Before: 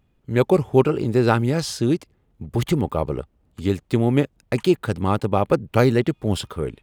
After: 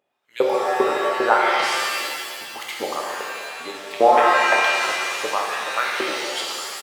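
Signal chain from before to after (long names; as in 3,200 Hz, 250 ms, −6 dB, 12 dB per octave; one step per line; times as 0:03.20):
0:03.96–0:04.65: parametric band 870 Hz +14 dB 2.4 octaves
on a send: single-tap delay 152 ms −16.5 dB
on the sum: auto-filter high-pass saw up 2.5 Hz 440–3,500 Hz
0:00.72–0:01.41: high shelf with overshoot 2,100 Hz −6.5 dB, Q 3
reverb with rising layers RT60 1.9 s, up +7 semitones, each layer −2 dB, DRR −1.5 dB
level −5 dB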